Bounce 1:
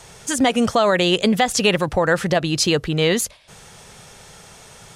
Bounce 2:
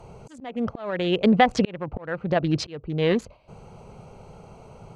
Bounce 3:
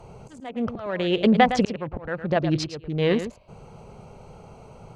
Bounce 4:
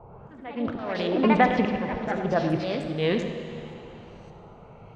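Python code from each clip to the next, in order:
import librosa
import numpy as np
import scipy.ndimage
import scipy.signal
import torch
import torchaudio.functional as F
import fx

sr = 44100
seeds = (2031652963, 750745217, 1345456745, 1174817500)

y1 = fx.wiener(x, sr, points=25)
y1 = fx.env_lowpass_down(y1, sr, base_hz=2500.0, full_db=-18.0)
y1 = fx.auto_swell(y1, sr, attack_ms=754.0)
y1 = y1 * 10.0 ** (3.0 / 20.0)
y2 = y1 + 10.0 ** (-10.5 / 20.0) * np.pad(y1, (int(110 * sr / 1000.0), 0))[:len(y1)]
y3 = fx.filter_lfo_lowpass(y2, sr, shape='saw_up', hz=0.93, low_hz=990.0, high_hz=6200.0, q=1.4)
y3 = fx.rev_plate(y3, sr, seeds[0], rt60_s=3.0, hf_ratio=0.95, predelay_ms=0, drr_db=5.5)
y3 = fx.echo_pitch(y3, sr, ms=122, semitones=3, count=2, db_per_echo=-6.0)
y3 = y3 * 10.0 ** (-3.5 / 20.0)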